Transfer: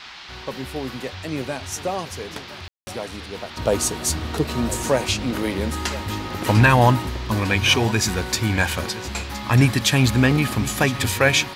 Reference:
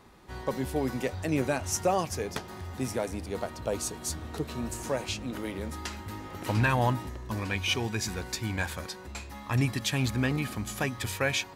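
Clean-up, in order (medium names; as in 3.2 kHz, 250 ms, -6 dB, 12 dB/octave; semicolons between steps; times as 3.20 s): room tone fill 2.68–2.87 s; noise print and reduce 6 dB; inverse comb 1016 ms -16 dB; gain correction -11 dB, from 3.57 s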